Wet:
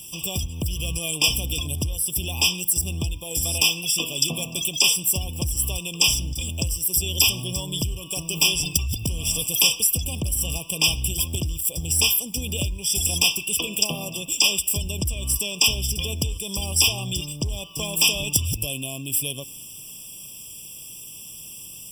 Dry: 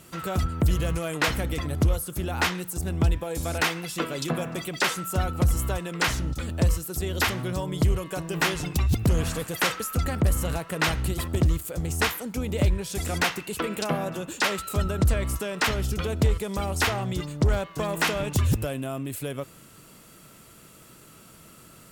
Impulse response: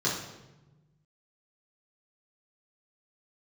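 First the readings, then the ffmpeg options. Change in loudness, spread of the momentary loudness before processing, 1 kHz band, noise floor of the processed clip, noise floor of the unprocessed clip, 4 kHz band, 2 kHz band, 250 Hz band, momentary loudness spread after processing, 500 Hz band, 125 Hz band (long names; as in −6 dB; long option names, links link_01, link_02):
+4.5 dB, 6 LU, −9.0 dB, −40 dBFS, −51 dBFS, +11.0 dB, 0.0 dB, −4.0 dB, 17 LU, −6.5 dB, −3.0 dB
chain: -filter_complex "[0:a]lowshelf=frequency=190:gain=9.5,acompressor=threshold=-17dB:ratio=12,aexciter=amount=10.9:drive=5.3:freq=2400,acrusher=bits=7:mix=0:aa=0.000001,asplit=2[link_01][link_02];[link_02]asplit=3[link_03][link_04][link_05];[link_03]bandpass=frequency=300:width_type=q:width=8,volume=0dB[link_06];[link_04]bandpass=frequency=870:width_type=q:width=8,volume=-6dB[link_07];[link_05]bandpass=frequency=2240:width_type=q:width=8,volume=-9dB[link_08];[link_06][link_07][link_08]amix=inputs=3:normalize=0[link_09];[1:a]atrim=start_sample=2205,adelay=28[link_10];[link_09][link_10]afir=irnorm=-1:irlink=0,volume=-25.5dB[link_11];[link_01][link_11]amix=inputs=2:normalize=0,afftfilt=real='re*eq(mod(floor(b*sr/1024/1200),2),0)':imag='im*eq(mod(floor(b*sr/1024/1200),2),0)':win_size=1024:overlap=0.75,volume=-6.5dB"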